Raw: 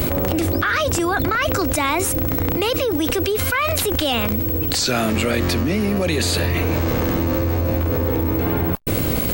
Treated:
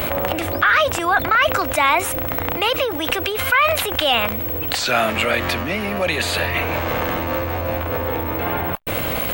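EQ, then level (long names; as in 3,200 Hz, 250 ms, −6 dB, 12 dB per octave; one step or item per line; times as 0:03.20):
flat-topped bell 1,400 Hz +12 dB 3 octaves
high-shelf EQ 9,600 Hz +7 dB
−7.0 dB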